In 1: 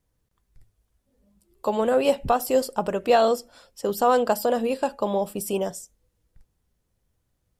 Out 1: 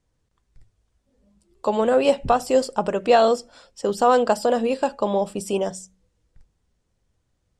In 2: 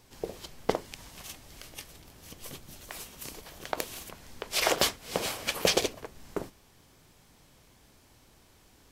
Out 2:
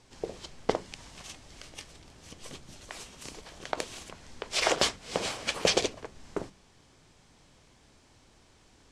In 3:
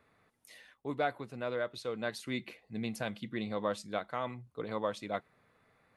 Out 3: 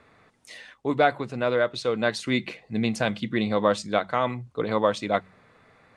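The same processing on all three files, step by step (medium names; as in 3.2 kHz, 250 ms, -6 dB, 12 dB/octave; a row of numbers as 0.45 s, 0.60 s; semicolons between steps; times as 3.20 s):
low-pass 8.6 kHz 24 dB/octave; de-hum 46.92 Hz, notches 4; peak normalisation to -6 dBFS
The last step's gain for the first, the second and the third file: +2.5 dB, 0.0 dB, +12.0 dB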